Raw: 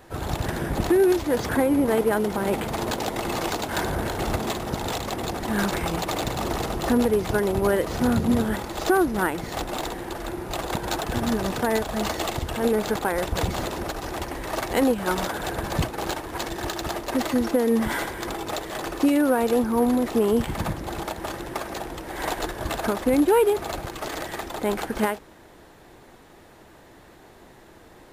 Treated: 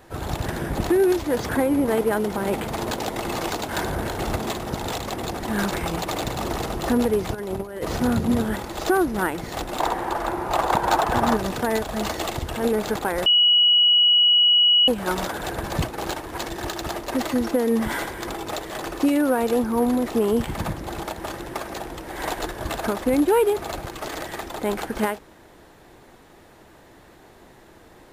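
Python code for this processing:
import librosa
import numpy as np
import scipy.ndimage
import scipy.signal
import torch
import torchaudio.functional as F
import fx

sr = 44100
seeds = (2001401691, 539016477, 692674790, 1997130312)

y = fx.over_compress(x, sr, threshold_db=-26.0, ratio=-0.5, at=(7.33, 7.97), fade=0.02)
y = fx.peak_eq(y, sr, hz=950.0, db=12.5, octaves=1.6, at=(9.8, 11.37))
y = fx.edit(y, sr, fx.bleep(start_s=13.26, length_s=1.62, hz=2920.0, db=-13.0), tone=tone)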